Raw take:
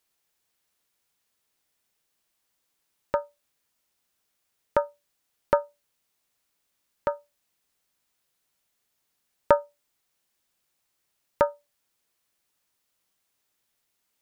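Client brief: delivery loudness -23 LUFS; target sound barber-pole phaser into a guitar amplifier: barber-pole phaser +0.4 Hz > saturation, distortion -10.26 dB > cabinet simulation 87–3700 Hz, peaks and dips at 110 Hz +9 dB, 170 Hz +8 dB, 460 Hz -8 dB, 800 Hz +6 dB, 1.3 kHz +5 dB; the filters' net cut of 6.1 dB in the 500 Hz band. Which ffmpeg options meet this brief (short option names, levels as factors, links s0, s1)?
-filter_complex "[0:a]equalizer=f=500:t=o:g=-6,asplit=2[s0][s1];[s1]afreqshift=0.4[s2];[s0][s2]amix=inputs=2:normalize=1,asoftclip=threshold=0.075,highpass=87,equalizer=f=110:t=q:w=4:g=9,equalizer=f=170:t=q:w=4:g=8,equalizer=f=460:t=q:w=4:g=-8,equalizer=f=800:t=q:w=4:g=6,equalizer=f=1300:t=q:w=4:g=5,lowpass=f=3700:w=0.5412,lowpass=f=3700:w=1.3066,volume=4.73"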